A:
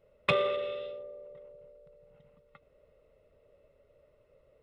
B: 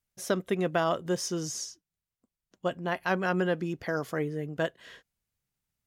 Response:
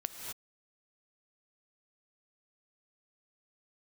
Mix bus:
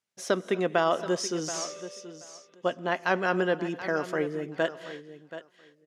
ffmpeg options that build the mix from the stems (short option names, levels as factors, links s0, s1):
-filter_complex "[0:a]aeval=exprs='0.0562*(abs(mod(val(0)/0.0562+3,4)-2)-1)':c=same,adelay=1250,volume=0.251,asplit=2[s0][s1];[s1]volume=0.158[s2];[1:a]volume=1.12,asplit=3[s3][s4][s5];[s4]volume=0.266[s6];[s5]volume=0.266[s7];[2:a]atrim=start_sample=2205[s8];[s6][s8]afir=irnorm=-1:irlink=0[s9];[s2][s7]amix=inputs=2:normalize=0,aecho=0:1:729|1458|2187:1|0.15|0.0225[s10];[s0][s3][s9][s10]amix=inputs=4:normalize=0,highpass=240,lowpass=7600"